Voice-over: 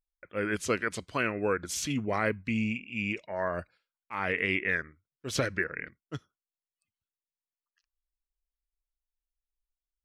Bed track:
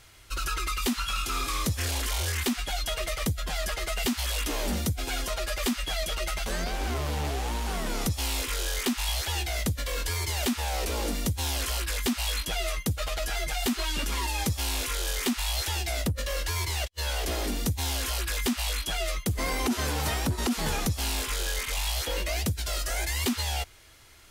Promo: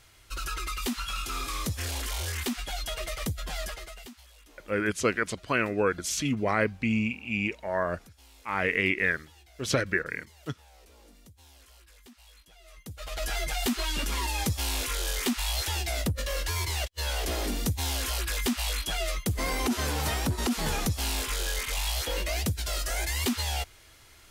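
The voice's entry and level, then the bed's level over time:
4.35 s, +3.0 dB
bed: 3.63 s -3.5 dB
4.29 s -26 dB
12.6 s -26 dB
13.24 s -0.5 dB

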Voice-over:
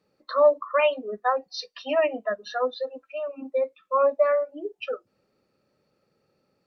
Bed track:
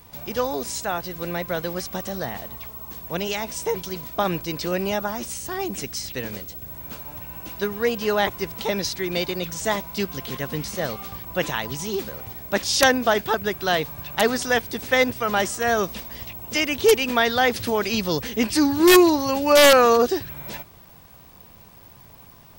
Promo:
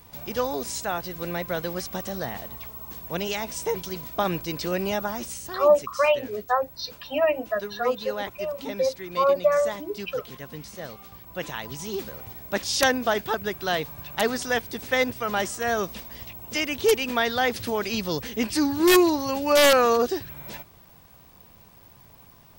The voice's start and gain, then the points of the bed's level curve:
5.25 s, +0.5 dB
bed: 5.18 s -2 dB
5.96 s -10.5 dB
11.11 s -10.5 dB
11.97 s -4 dB

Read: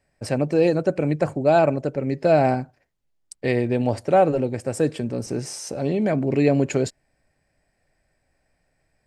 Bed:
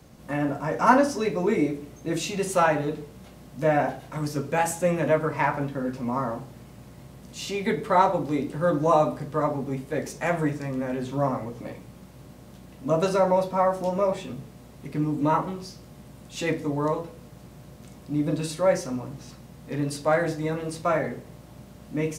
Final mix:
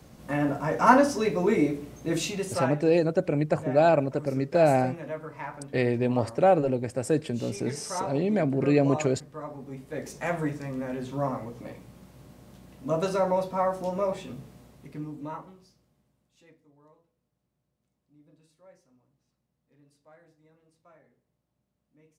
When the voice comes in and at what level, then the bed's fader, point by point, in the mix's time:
2.30 s, -3.5 dB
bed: 2.24 s 0 dB
2.81 s -13.5 dB
9.46 s -13.5 dB
10.15 s -4 dB
14.55 s -4 dB
16.65 s -34 dB

